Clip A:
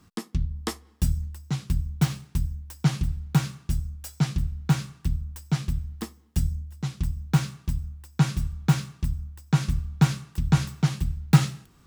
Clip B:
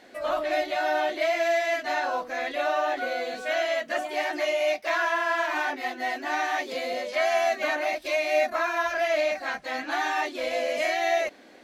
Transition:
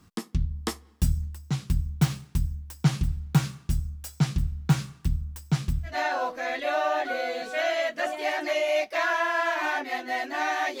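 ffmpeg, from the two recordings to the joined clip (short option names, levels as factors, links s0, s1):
-filter_complex "[0:a]apad=whole_dur=10.8,atrim=end=10.8,atrim=end=5.97,asetpts=PTS-STARTPTS[s0];[1:a]atrim=start=1.75:end=6.72,asetpts=PTS-STARTPTS[s1];[s0][s1]acrossfade=d=0.14:c1=tri:c2=tri"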